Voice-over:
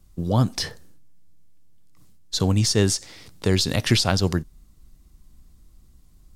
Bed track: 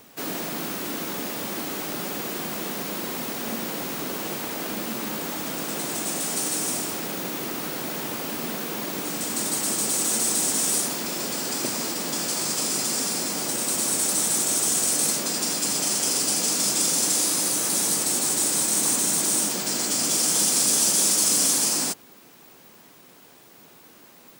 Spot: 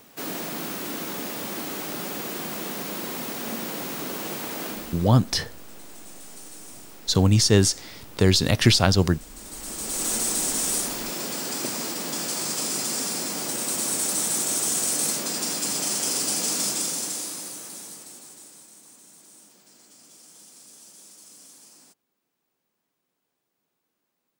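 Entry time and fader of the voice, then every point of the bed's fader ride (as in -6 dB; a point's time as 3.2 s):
4.75 s, +2.0 dB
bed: 4.67 s -1.5 dB
5.25 s -17.5 dB
9.33 s -17.5 dB
10.07 s -2 dB
16.61 s -2 dB
18.83 s -28.5 dB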